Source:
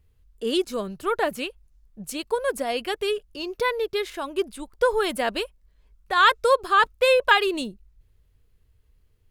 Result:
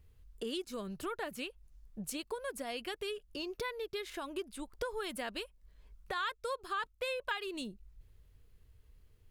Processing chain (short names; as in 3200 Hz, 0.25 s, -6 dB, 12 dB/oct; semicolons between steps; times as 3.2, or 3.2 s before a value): dynamic EQ 620 Hz, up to -5 dB, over -33 dBFS, Q 0.77; compressor 3:1, threshold -40 dBFS, peak gain reduction 19 dB